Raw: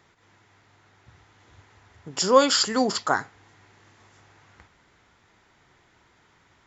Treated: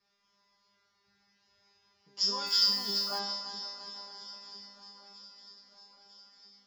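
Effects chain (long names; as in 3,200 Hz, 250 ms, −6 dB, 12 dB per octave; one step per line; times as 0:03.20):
feedback delay that plays each chunk backwards 169 ms, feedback 78%, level −9.5 dB
low-pass with resonance 5,100 Hz, resonance Q 10
tuned comb filter 200 Hz, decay 0.79 s, harmonics all, mix 100%
feedback echo with a long and a short gap by turns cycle 952 ms, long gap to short 3 to 1, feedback 62%, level −19.5 dB
0:02.46–0:03.18: background noise violet −51 dBFS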